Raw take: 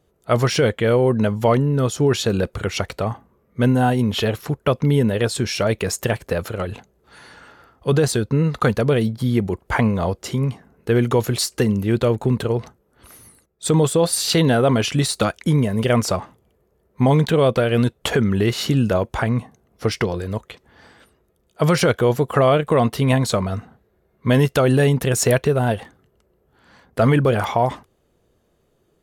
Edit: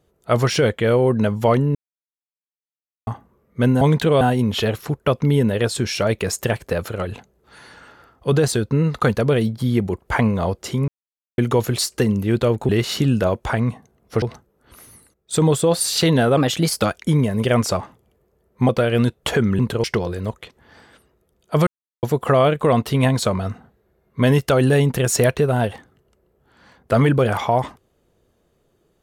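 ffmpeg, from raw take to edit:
-filter_complex "[0:a]asplit=16[a][b][c][d][e][f][g][h][i][j][k][l][m][n][o][p];[a]atrim=end=1.75,asetpts=PTS-STARTPTS,afade=t=out:st=1.746:d=0.004:c=hsin[q];[b]atrim=start=1.75:end=3.07,asetpts=PTS-STARTPTS,volume=0[r];[c]atrim=start=3.07:end=3.812,asetpts=PTS-STARTPTS,afade=t=in:d=0.004:c=hsin[s];[d]atrim=start=17.078:end=17.482[t];[e]atrim=start=3.808:end=10.48,asetpts=PTS-STARTPTS,afade=t=out:st=6.668:d=0.004:c=hsin[u];[f]atrim=start=10.48:end=10.98,asetpts=PTS-STARTPTS,volume=0[v];[g]atrim=start=10.98:end=12.292,asetpts=PTS-STARTPTS,afade=t=in:d=0.004:c=hsin[w];[h]atrim=start=18.378:end=19.912[x];[i]atrim=start=12.538:end=14.694[y];[j]atrim=start=14.69:end=15.21,asetpts=PTS-STARTPTS,asetrate=51156,aresample=44100[z];[k]atrim=start=15.206:end=17.082[aa];[l]atrim=start=17.478:end=18.382[ab];[m]atrim=start=12.288:end=12.542[ac];[n]atrim=start=19.908:end=21.74,asetpts=PTS-STARTPTS,afade=t=out:st=1.828:d=0.004:c=hsin[ad];[o]atrim=start=21.74:end=22.1,asetpts=PTS-STARTPTS,volume=0[ae];[p]atrim=start=22.1,asetpts=PTS-STARTPTS,afade=t=in:d=0.004:c=hsin[af];[q][r][s]concat=n=3:v=0:a=1[ag];[ag][t]acrossfade=d=0.004:c1=hsin:c2=hsin[ah];[u][v][w]concat=n=3:v=0:a=1[ai];[ah][ai]acrossfade=d=0.004:c1=hsin:c2=hsin[aj];[aj][x]acrossfade=d=0.004:c1=hsin:c2=hsin[ak];[ak][y]acrossfade=d=0.004:c1=hsin:c2=hsin[al];[al][z]acrossfade=d=0.004:c1=hsin:c2=hsin[am];[am][aa]acrossfade=d=0.004:c1=hsin:c2=hsin[an];[an][ab]acrossfade=d=0.004:c1=hsin:c2=hsin[ao];[ao][ac]acrossfade=d=0.004:c1=hsin:c2=hsin[ap];[ad][ae][af]concat=n=3:v=0:a=1[aq];[ap][aq]acrossfade=d=0.004:c1=hsin:c2=hsin"

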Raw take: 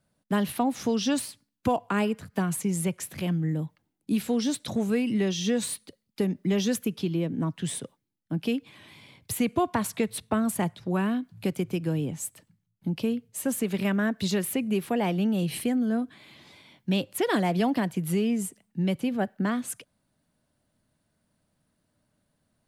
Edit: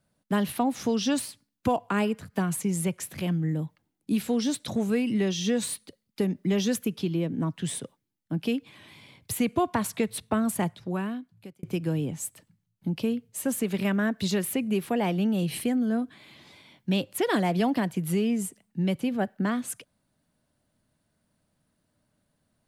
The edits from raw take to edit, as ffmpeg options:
-filter_complex "[0:a]asplit=2[a][b];[a]atrim=end=11.63,asetpts=PTS-STARTPTS,afade=t=out:st=10.63:d=1[c];[b]atrim=start=11.63,asetpts=PTS-STARTPTS,afade=t=in:d=0.004:c=hsin[d];[c][d]concat=n=2:v=0:a=1"

